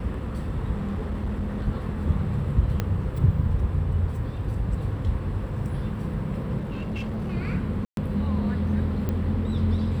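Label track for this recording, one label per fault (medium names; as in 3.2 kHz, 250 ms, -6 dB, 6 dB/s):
0.740000	1.660000	clipped -24 dBFS
2.800000	2.800000	pop -12 dBFS
6.570000	7.330000	clipped -26.5 dBFS
7.850000	7.970000	dropout 122 ms
9.090000	9.090000	pop -16 dBFS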